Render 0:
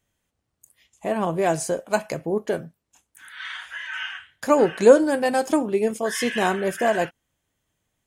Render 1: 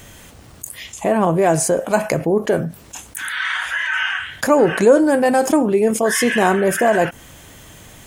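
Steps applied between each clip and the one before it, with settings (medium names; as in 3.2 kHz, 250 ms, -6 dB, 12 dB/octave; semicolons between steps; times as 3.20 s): dynamic bell 3.9 kHz, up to -7 dB, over -45 dBFS, Q 1; level flattener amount 50%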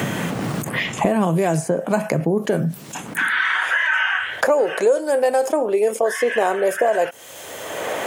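high-pass sweep 150 Hz -> 510 Hz, 3.04–3.83 s; three bands compressed up and down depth 100%; trim -6 dB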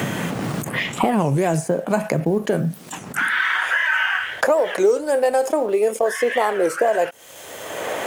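companding laws mixed up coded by A; warped record 33 1/3 rpm, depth 250 cents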